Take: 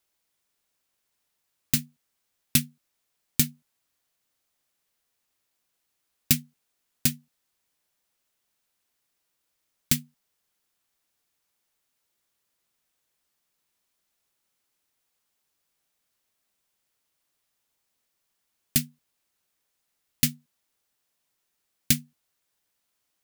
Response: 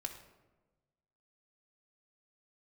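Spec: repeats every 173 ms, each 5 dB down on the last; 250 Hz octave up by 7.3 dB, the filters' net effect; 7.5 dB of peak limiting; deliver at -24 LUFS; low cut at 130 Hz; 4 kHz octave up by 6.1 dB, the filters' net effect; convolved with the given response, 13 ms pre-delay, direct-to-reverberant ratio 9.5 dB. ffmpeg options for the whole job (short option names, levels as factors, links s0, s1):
-filter_complex "[0:a]highpass=130,equalizer=f=250:t=o:g=8.5,equalizer=f=4000:t=o:g=7.5,alimiter=limit=0.422:level=0:latency=1,aecho=1:1:173|346|519|692|865|1038|1211:0.562|0.315|0.176|0.0988|0.0553|0.031|0.0173,asplit=2[s0][s1];[1:a]atrim=start_sample=2205,adelay=13[s2];[s1][s2]afir=irnorm=-1:irlink=0,volume=0.398[s3];[s0][s3]amix=inputs=2:normalize=0,volume=1.58"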